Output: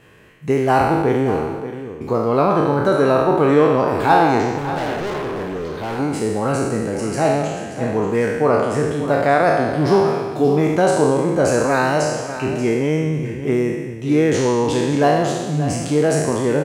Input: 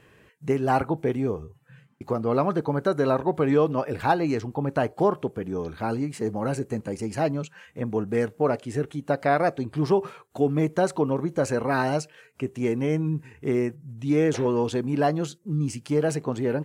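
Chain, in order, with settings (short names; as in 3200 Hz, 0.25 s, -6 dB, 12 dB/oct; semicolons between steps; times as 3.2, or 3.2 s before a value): spectral trails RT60 1.37 s; 4.58–5.99 overloaded stage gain 27.5 dB; on a send: echo 0.582 s -12 dB; on the sum: gain +4.5 dB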